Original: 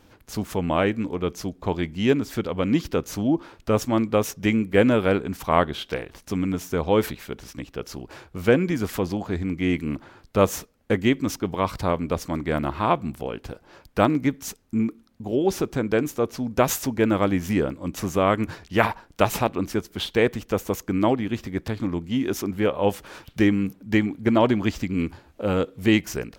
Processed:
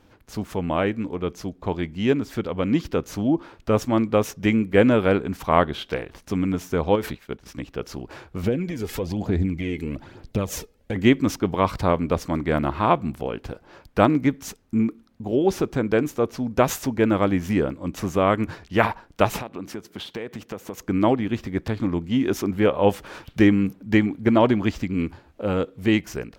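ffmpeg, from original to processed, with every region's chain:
-filter_complex "[0:a]asettb=1/sr,asplit=3[a][b][c];[a]atrim=end=6.954[d];[b]atrim=start=6.95:end=7.46,asetpts=PTS-STARTPTS,afade=t=in:d=0.004:c=qsin,afade=t=out:st=0.506:d=0.004:c=qsin,agate=range=-33dB:threshold=-35dB:ratio=3:release=100:detection=peak,acompressor=threshold=-22dB:ratio=10:attack=3.2:release=140:knee=1:detection=peak[e];[c]atrim=start=7.456[f];[d][e]acrossfade=d=0.004:c1=hsin:c2=qsin[g];[g][f]acrossfade=d=0.004:c1=qsin:c2=hsin,asettb=1/sr,asplit=3[h][i][j];[h]atrim=end=8.434[k];[i]atrim=start=8.43:end=10.96,asetpts=PTS-STARTPTS,afade=t=in:d=0.004:c=qsin,afade=t=out:st=2.526:d=0.004:c=qsin,equalizer=f=1.2k:t=o:w=1.1:g=-7.5,acompressor=threshold=-27dB:ratio=4:attack=3.2:release=140:knee=1:detection=peak,aphaser=in_gain=1:out_gain=1:delay=2.4:decay=0.49:speed=1.1:type=sinusoidal[l];[j]atrim=start=10.956[m];[k][l]acrossfade=d=0.004:c1=hsin:c2=qsin[n];[n][m]acrossfade=d=0.004:c1=qsin:c2=hsin,asettb=1/sr,asplit=3[o][p][q];[o]atrim=end=19.404[r];[p]atrim=start=19.4:end=20.78,asetpts=PTS-STARTPTS,afade=t=in:d=0.004:c=qsin,afade=t=out:st=1.376:d=0.004:c=qsin,highpass=120,acompressor=threshold=-30dB:ratio=5:attack=3.2:release=140:knee=1:detection=peak[s];[q]atrim=start=20.776[t];[r][s]acrossfade=d=0.004:c1=hsin:c2=qsin[u];[u][t]acrossfade=d=0.004:c1=qsin:c2=hsin,highshelf=f=4.8k:g=-6.5,dynaudnorm=f=460:g=13:m=11.5dB,volume=-1dB"

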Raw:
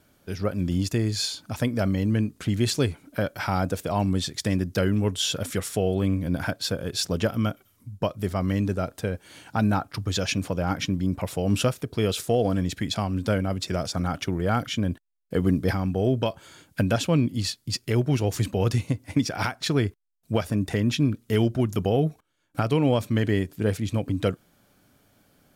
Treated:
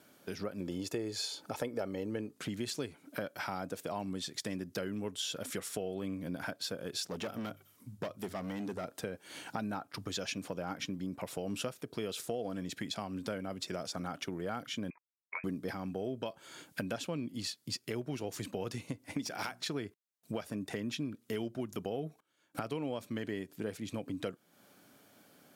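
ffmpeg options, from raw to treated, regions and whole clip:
-filter_complex "[0:a]asettb=1/sr,asplit=3[a][b][c];[a]atrim=end=0.604[d];[b]atrim=start=0.6:end=2.35,asetpts=PTS-STARTPTS,afade=t=in:d=0.004:c=qsin,afade=t=out:st=1.746:d=0.004:c=qsin,equalizer=f=580:w=0.85:g=8.5,aecho=1:1:2.3:0.35,atrim=end_sample=77175[e];[c]atrim=start=2.346[f];[d][e]acrossfade=d=0.004:c1=hsin:c2=qsin[g];[g][f]acrossfade=d=0.004:c1=qsin:c2=hsin,asettb=1/sr,asplit=3[h][i][j];[h]atrim=end=7.094[k];[i]atrim=start=7.09:end=8.85,asetpts=PTS-STARTPTS,afade=t=in:d=0.004:c=qsin,afade=t=out:st=1.756:d=0.004:c=qsin,bandreject=f=50:t=h:w=6,bandreject=f=100:t=h:w=6,bandreject=f=150:t=h:w=6,asoftclip=type=hard:threshold=-24dB[l];[j]atrim=start=8.846[m];[k][l]acrossfade=d=0.004:c1=hsin:c2=qsin[n];[n][m]acrossfade=d=0.004:c1=qsin:c2=hsin,asettb=1/sr,asplit=3[o][p][q];[o]atrim=end=14.904[r];[p]atrim=start=14.9:end=15.44,asetpts=PTS-STARTPTS,afade=t=in:d=0.004:c=qsin,afade=t=out:st=0.536:d=0.004:c=qsin,agate=range=-33dB:threshold=-49dB:ratio=3:release=100:detection=peak,highpass=720,lowpass=f=2.3k:t=q:w=0.5098,lowpass=f=2.3k:t=q:w=0.6013,lowpass=f=2.3k:t=q:w=0.9,lowpass=f=2.3k:t=q:w=2.563,afreqshift=-2700[s];[q]atrim=start=15.436[t];[r][s]acrossfade=d=0.004:c1=hsin:c2=qsin[u];[u][t]acrossfade=d=0.004:c1=qsin:c2=hsin,asettb=1/sr,asplit=3[v][w][x];[v]atrim=end=19.214[y];[w]atrim=start=19.21:end=19.61,asetpts=PTS-STARTPTS,afade=t=in:d=0.004:c=qsin,afade=t=out:st=0.396:d=0.004:c=qsin,highshelf=f=3.8k:g=6,bandreject=f=60:t=h:w=6,bandreject=f=120:t=h:w=6,bandreject=f=180:t=h:w=6,bandreject=f=240:t=h:w=6,bandreject=f=300:t=h:w=6,bandreject=f=360:t=h:w=6,aeval=exprs='clip(val(0),-1,0.0668)':c=same[z];[x]atrim=start=19.606[aa];[y][z]acrossfade=d=0.004:c1=hsin:c2=qsin[ab];[ab][aa]acrossfade=d=0.004:c1=qsin:c2=hsin,highpass=200,acompressor=threshold=-40dB:ratio=3,volume=1dB"

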